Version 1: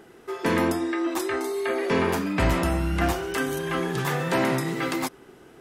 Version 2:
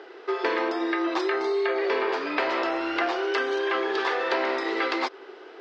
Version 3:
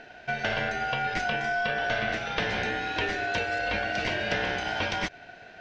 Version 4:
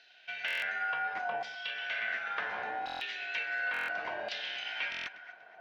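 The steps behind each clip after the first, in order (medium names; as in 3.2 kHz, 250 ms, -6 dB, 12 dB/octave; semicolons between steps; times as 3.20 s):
elliptic band-pass 380–4700 Hz, stop band 40 dB; compression, threshold -30 dBFS, peak gain reduction 9.5 dB; trim +7.5 dB
ring modulator 1.1 kHz
LFO band-pass saw down 0.7 Hz 770–4200 Hz; echo whose repeats swap between lows and highs 121 ms, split 1 kHz, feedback 56%, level -13.5 dB; buffer glitch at 0.46/2.85/3.72/4.90 s, samples 1024, times 6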